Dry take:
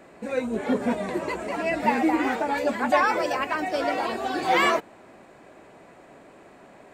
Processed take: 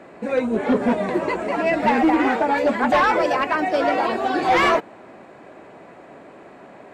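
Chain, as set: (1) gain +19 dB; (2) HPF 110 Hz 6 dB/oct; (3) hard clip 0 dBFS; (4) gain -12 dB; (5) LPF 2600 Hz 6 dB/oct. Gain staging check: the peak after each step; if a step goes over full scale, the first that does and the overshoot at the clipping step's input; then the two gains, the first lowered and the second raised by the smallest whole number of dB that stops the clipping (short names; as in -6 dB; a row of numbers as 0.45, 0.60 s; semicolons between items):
+10.0, +10.0, 0.0, -12.0, -12.0 dBFS; step 1, 10.0 dB; step 1 +9 dB, step 4 -2 dB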